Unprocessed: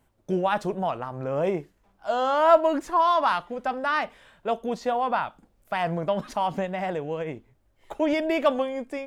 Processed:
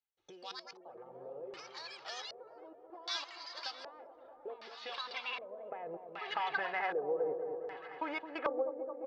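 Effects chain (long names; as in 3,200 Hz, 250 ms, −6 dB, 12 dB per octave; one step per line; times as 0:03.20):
adaptive Wiener filter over 9 samples
low-shelf EQ 93 Hz +7 dB
comb filter 2.4 ms, depth 66%
downward compressor 6 to 1, threshold −35 dBFS, peak gain reduction 19.5 dB
gate pattern ".xx..xxxxxx.x..x" 88 BPM −24 dB
delay with pitch and tempo change per echo 210 ms, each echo +5 semitones, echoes 3, each echo −6 dB
band-pass filter sweep 5,000 Hz → 1,300 Hz, 0:03.69–0:07.27
echo whose low-pass opens from repeat to repeat 217 ms, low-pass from 750 Hz, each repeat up 1 octave, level −6 dB
auto-filter low-pass square 0.65 Hz 500–4,800 Hz
level +12 dB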